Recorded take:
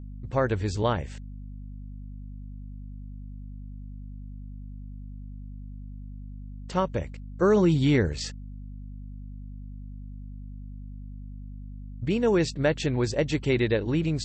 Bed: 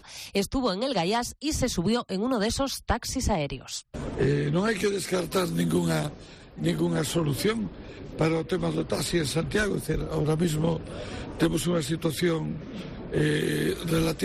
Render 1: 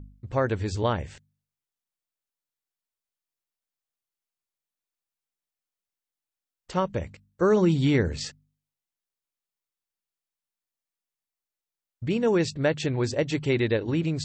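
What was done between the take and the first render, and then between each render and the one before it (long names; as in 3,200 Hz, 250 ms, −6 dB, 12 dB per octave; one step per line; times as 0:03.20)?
hum removal 50 Hz, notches 5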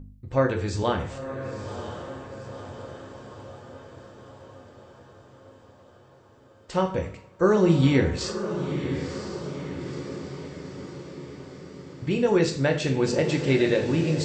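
feedback delay with all-pass diffusion 990 ms, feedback 61%, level −9 dB
coupled-rooms reverb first 0.44 s, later 1.8 s, from −21 dB, DRR 2.5 dB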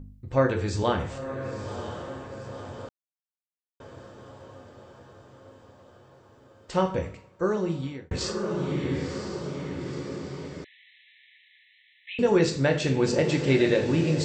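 0:02.89–0:03.80: silence
0:06.86–0:08.11: fade out
0:10.64–0:12.19: linear-phase brick-wall band-pass 1,700–4,100 Hz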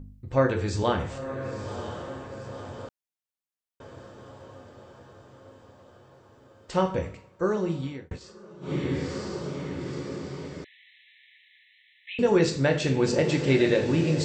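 0:08.06–0:08.74: duck −18 dB, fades 0.13 s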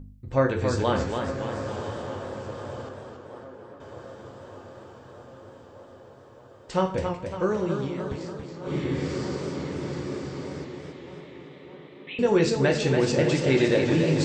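tape delay 614 ms, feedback 85%, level −13.5 dB, low-pass 2,700 Hz
feedback echo with a swinging delay time 280 ms, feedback 49%, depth 106 cents, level −6 dB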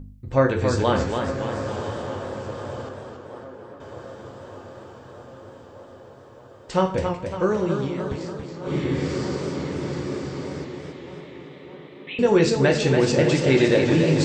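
level +3.5 dB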